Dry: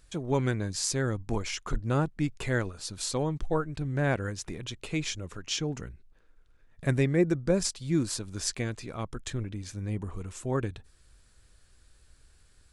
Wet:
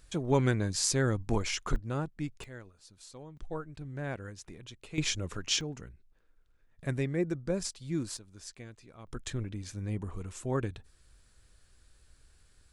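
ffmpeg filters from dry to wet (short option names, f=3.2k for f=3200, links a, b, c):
-af "asetnsamples=n=441:p=0,asendcmd='1.76 volume volume -7dB;2.44 volume volume -18.5dB;3.37 volume volume -10dB;4.98 volume volume 2.5dB;5.61 volume volume -6.5dB;8.17 volume volume -15dB;9.07 volume volume -2dB',volume=1dB"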